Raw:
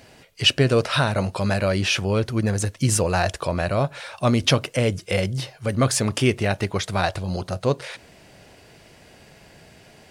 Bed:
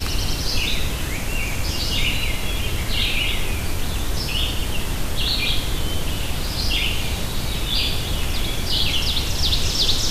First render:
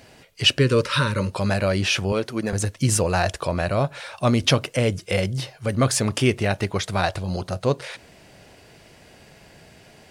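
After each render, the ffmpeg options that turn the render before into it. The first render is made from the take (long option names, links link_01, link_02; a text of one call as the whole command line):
ffmpeg -i in.wav -filter_complex "[0:a]asettb=1/sr,asplit=3[link_01][link_02][link_03];[link_01]atrim=end=0.594[link_04];[link_02]atrim=start=0.59:end=1.32,asetpts=PTS-STARTPTS,afade=type=in:duration=0.004:curve=qsin,afade=type=out:start_time=0.726:duration=0.004:curve=qsin,asuperstop=centerf=730:order=20:qfactor=2.5[link_05];[link_03]atrim=start=1.316[link_06];[link_04][link_05]acrossfade=duration=0.004:curve1=hsin:curve2=qsin[link_07];[link_07][link_06]acrossfade=duration=0.004:curve1=qsin:curve2=hsin,asettb=1/sr,asplit=3[link_08][link_09][link_10];[link_08]atrim=end=2.124[link_11];[link_09]atrim=start=2.12:end=2.53,asetpts=PTS-STARTPTS,afade=type=in:duration=0.004:curve=qsin,afade=type=out:start_time=0.406:duration=0.004:curve=qsin,highpass=220[link_12];[link_10]atrim=start=2.526[link_13];[link_11][link_12]acrossfade=duration=0.004:curve1=hsin:curve2=qsin[link_14];[link_14][link_13]acrossfade=duration=0.004:curve1=qsin:curve2=hsin" out.wav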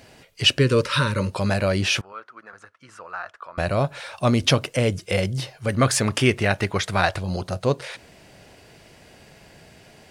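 ffmpeg -i in.wav -filter_complex "[0:a]asettb=1/sr,asplit=3[link_01][link_02][link_03];[link_01]atrim=end=2.014[link_04];[link_02]atrim=start=2.01:end=3.58,asetpts=PTS-STARTPTS,afade=type=in:duration=0.004:curve=qsin,afade=type=out:start_time=1.566:duration=0.004:curve=qsin,bandpass=frequency=1300:width_type=q:width=5.1[link_05];[link_03]atrim=start=3.576[link_06];[link_04][link_05]acrossfade=duration=0.004:curve1=hsin:curve2=qsin[link_07];[link_07][link_06]acrossfade=duration=0.004:curve1=qsin:curve2=hsin,asettb=1/sr,asplit=3[link_08][link_09][link_10];[link_08]atrim=end=5.684[link_11];[link_09]atrim=start=5.68:end=7.21,asetpts=PTS-STARTPTS,afade=type=in:duration=0.004:curve=qsin,afade=type=out:start_time=1.526:duration=0.004:curve=qsin,equalizer=frequency=1700:width_type=o:width=1.5:gain=5[link_12];[link_10]atrim=start=7.206[link_13];[link_11][link_12]acrossfade=duration=0.004:curve1=hsin:curve2=qsin[link_14];[link_14][link_13]acrossfade=duration=0.004:curve1=qsin:curve2=hsin" out.wav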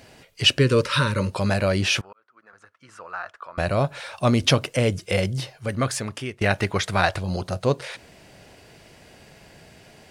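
ffmpeg -i in.wav -filter_complex "[0:a]asplit=3[link_01][link_02][link_03];[link_01]atrim=end=2.13,asetpts=PTS-STARTPTS,afade=type=out:start_time=2.126:duration=0.004:curve=hsin[link_04];[link_02]atrim=start=2.13:end=6.41,asetpts=PTS-STARTPTS,afade=type=in:duration=0.91,afade=type=out:start_time=3.15:duration=1.13:silence=0.105925[link_05];[link_03]atrim=start=6.41,asetpts=PTS-STARTPTS,afade=type=in:duration=0.004:curve=hsin:silence=0.105925[link_06];[link_04][link_05][link_06]concat=n=3:v=0:a=1" out.wav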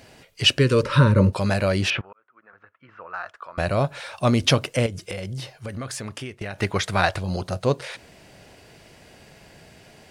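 ffmpeg -i in.wav -filter_complex "[0:a]asettb=1/sr,asplit=3[link_01][link_02][link_03];[link_01]atrim=end=0.834[link_04];[link_02]atrim=start=0.83:end=1.33,asetpts=PTS-STARTPTS,afade=type=in:duration=0.004:curve=qsin,afade=type=out:start_time=0.496:duration=0.004:curve=qsin,tiltshelf=frequency=1300:gain=8.5[link_05];[link_03]atrim=start=1.326[link_06];[link_04][link_05]acrossfade=duration=0.004:curve1=hsin:curve2=qsin[link_07];[link_07][link_06]acrossfade=duration=0.004:curve1=qsin:curve2=hsin,asettb=1/sr,asplit=3[link_08][link_09][link_10];[link_08]atrim=end=1.904[link_11];[link_09]atrim=start=1.9:end=3.14,asetpts=PTS-STARTPTS,afade=type=in:duration=0.004:curve=qsin,afade=type=out:start_time=1.236:duration=0.004:curve=qsin,lowpass=frequency=2800:width=0.5412,lowpass=frequency=2800:width=1.3066[link_12];[link_10]atrim=start=3.136[link_13];[link_11][link_12]acrossfade=duration=0.004:curve1=hsin:curve2=qsin[link_14];[link_14][link_13]acrossfade=duration=0.004:curve1=qsin:curve2=hsin,asettb=1/sr,asplit=3[link_15][link_16][link_17];[link_15]atrim=end=4.864[link_18];[link_16]atrim=start=4.86:end=6.62,asetpts=PTS-STARTPTS,afade=type=in:duration=0.004:curve=qsin,afade=type=out:start_time=1.756:duration=0.004:curve=qsin,acompressor=threshold=-28dB:ratio=6:attack=3.2:release=140:knee=1:detection=peak[link_19];[link_17]atrim=start=6.616[link_20];[link_18][link_19]acrossfade=duration=0.004:curve1=hsin:curve2=qsin[link_21];[link_21][link_20]acrossfade=duration=0.004:curve1=qsin:curve2=hsin" out.wav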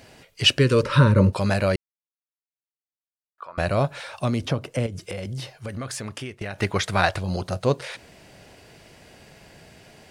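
ffmpeg -i in.wav -filter_complex "[0:a]asettb=1/sr,asplit=3[link_01][link_02][link_03];[link_01]atrim=end=4.024[link_04];[link_02]atrim=start=4.02:end=5.26,asetpts=PTS-STARTPTS,afade=type=in:duration=0.004:curve=qsin,afade=type=out:start_time=1.236:duration=0.004:curve=qsin,acrossover=split=360|1400[link_05][link_06][link_07];[link_05]acompressor=threshold=-22dB:ratio=4[link_08];[link_06]acompressor=threshold=-29dB:ratio=4[link_09];[link_07]acompressor=threshold=-37dB:ratio=4[link_10];[link_08][link_09][link_10]amix=inputs=3:normalize=0[link_11];[link_03]atrim=start=5.256[link_12];[link_04][link_11]acrossfade=duration=0.004:curve1=hsin:curve2=qsin[link_13];[link_13][link_12]acrossfade=duration=0.004:curve1=qsin:curve2=hsin,asplit=3[link_14][link_15][link_16];[link_14]atrim=end=1.76,asetpts=PTS-STARTPTS,afade=type=out:start_time=1.756:duration=0.004:curve=hsin[link_17];[link_15]atrim=start=1.76:end=3.38,asetpts=PTS-STARTPTS,volume=0[link_18];[link_16]atrim=start=3.38,asetpts=PTS-STARTPTS,afade=type=in:duration=0.004:curve=hsin[link_19];[link_17][link_18][link_19]concat=n=3:v=0:a=1" out.wav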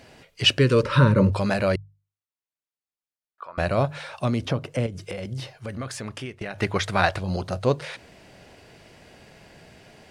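ffmpeg -i in.wav -af "highshelf=frequency=6900:gain=-7,bandreject=frequency=50:width_type=h:width=6,bandreject=frequency=100:width_type=h:width=6,bandreject=frequency=150:width_type=h:width=6" out.wav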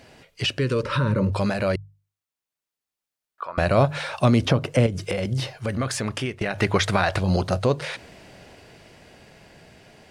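ffmpeg -i in.wav -af "alimiter=limit=-14.5dB:level=0:latency=1:release=118,dynaudnorm=framelen=220:gausssize=21:maxgain=7dB" out.wav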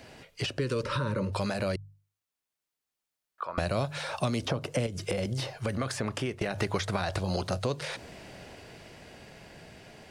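ffmpeg -i in.wav -filter_complex "[0:a]acrossover=split=380|1400|3700[link_01][link_02][link_03][link_04];[link_01]acompressor=threshold=-32dB:ratio=4[link_05];[link_02]acompressor=threshold=-33dB:ratio=4[link_06];[link_03]acompressor=threshold=-44dB:ratio=4[link_07];[link_04]acompressor=threshold=-39dB:ratio=4[link_08];[link_05][link_06][link_07][link_08]amix=inputs=4:normalize=0" out.wav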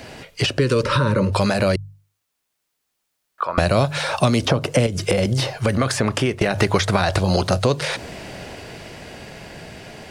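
ffmpeg -i in.wav -af "volume=12dB" out.wav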